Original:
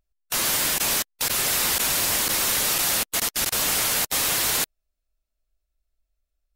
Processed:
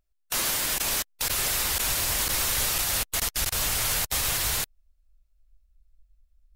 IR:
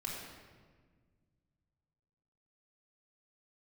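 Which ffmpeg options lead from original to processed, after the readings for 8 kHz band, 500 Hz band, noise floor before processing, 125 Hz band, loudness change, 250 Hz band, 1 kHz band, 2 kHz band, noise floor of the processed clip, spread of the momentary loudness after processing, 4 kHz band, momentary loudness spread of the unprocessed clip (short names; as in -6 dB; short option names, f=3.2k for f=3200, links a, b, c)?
-3.5 dB, -5.0 dB, -80 dBFS, +2.5 dB, -3.5 dB, -5.5 dB, -4.0 dB, -3.5 dB, -69 dBFS, 3 LU, -3.5 dB, 3 LU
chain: -af "alimiter=limit=-17dB:level=0:latency=1:release=163,asubboost=boost=7.5:cutoff=95"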